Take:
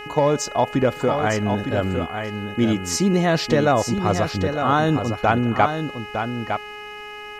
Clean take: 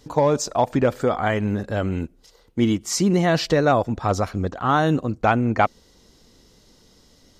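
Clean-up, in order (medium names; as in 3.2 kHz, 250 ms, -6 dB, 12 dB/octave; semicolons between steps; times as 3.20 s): de-hum 418.5 Hz, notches 7; expander -28 dBFS, range -21 dB; inverse comb 908 ms -7 dB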